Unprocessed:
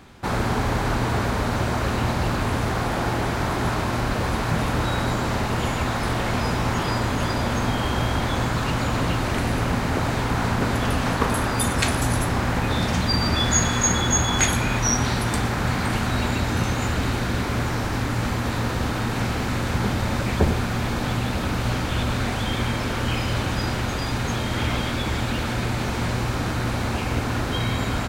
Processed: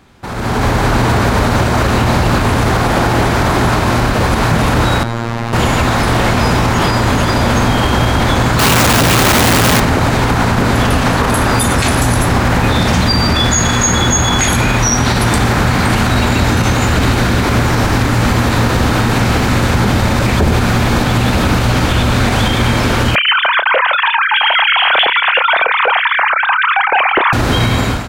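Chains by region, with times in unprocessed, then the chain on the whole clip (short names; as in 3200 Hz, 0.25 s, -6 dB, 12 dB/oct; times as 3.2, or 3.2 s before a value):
5.03–5.53 high shelf 5100 Hz -9 dB + robotiser 116 Hz
8.59–9.8 infinite clipping + HPF 75 Hz 6 dB/oct
23.15–27.33 sine-wave speech + doubler 30 ms -12 dB + Doppler distortion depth 0.28 ms
whole clip: limiter -17 dBFS; AGC gain up to 15 dB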